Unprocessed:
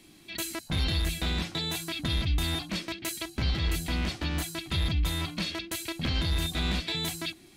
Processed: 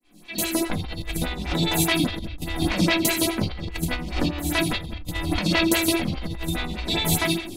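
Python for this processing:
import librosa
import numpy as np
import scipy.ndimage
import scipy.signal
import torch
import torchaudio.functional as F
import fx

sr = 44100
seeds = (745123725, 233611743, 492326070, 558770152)

y = fx.fade_in_head(x, sr, length_s=0.71)
y = fx.echo_feedback(y, sr, ms=82, feedback_pct=40, wet_db=-13.0)
y = fx.room_shoebox(y, sr, seeds[0], volume_m3=160.0, walls='furnished', distance_m=1.9)
y = fx.over_compress(y, sr, threshold_db=-30.0, ratio=-1.0)
y = fx.stagger_phaser(y, sr, hz=4.9)
y = F.gain(torch.from_numpy(y), 9.0).numpy()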